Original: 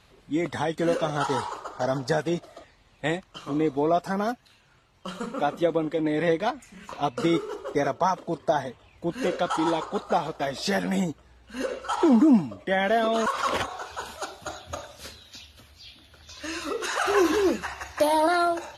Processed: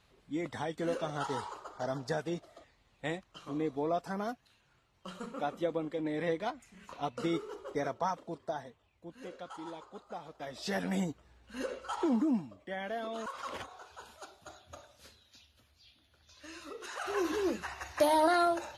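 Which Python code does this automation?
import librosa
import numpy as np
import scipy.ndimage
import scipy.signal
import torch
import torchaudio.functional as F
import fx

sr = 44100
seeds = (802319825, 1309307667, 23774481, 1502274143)

y = fx.gain(x, sr, db=fx.line((8.11, -9.5), (9.1, -19.5), (10.17, -19.5), (10.84, -7.0), (11.56, -7.0), (12.67, -15.0), (16.82, -15.0), (17.98, -4.5)))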